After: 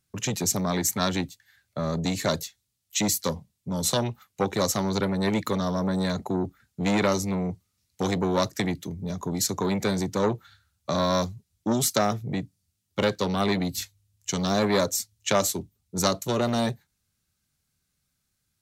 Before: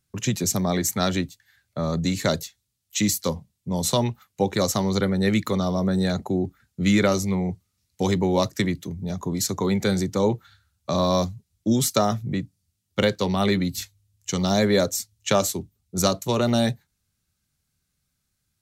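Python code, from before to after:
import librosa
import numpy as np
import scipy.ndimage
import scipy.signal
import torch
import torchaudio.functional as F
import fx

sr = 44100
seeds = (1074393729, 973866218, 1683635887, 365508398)

y = fx.low_shelf(x, sr, hz=150.0, db=-3.5)
y = fx.transformer_sat(y, sr, knee_hz=930.0)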